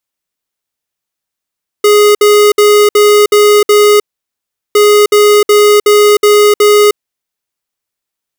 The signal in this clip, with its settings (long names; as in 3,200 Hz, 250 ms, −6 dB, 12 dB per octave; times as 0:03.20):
beeps in groups square 416 Hz, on 0.31 s, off 0.06 s, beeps 6, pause 0.75 s, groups 2, −5.5 dBFS